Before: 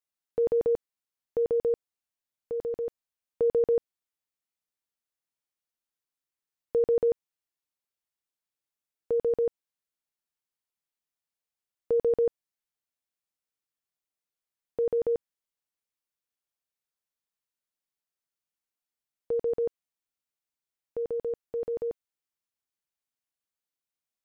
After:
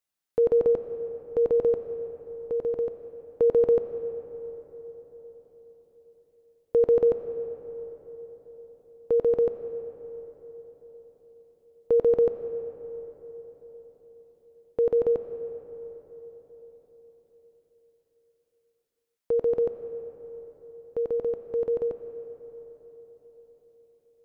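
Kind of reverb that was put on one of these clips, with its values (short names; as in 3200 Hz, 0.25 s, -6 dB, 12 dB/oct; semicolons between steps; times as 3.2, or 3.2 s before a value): digital reverb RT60 5 s, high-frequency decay 0.4×, pre-delay 50 ms, DRR 9 dB; gain +4 dB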